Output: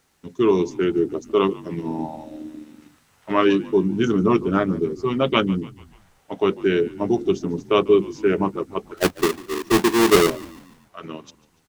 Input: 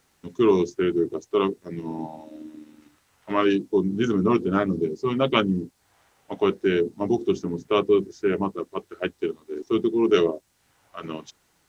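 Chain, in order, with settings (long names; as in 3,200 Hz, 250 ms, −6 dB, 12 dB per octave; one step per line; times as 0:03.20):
0:08.97–0:10.30: each half-wave held at its own peak
echo with shifted repeats 145 ms, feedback 51%, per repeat −50 Hz, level −20 dB
speech leveller within 3 dB 2 s
level +2 dB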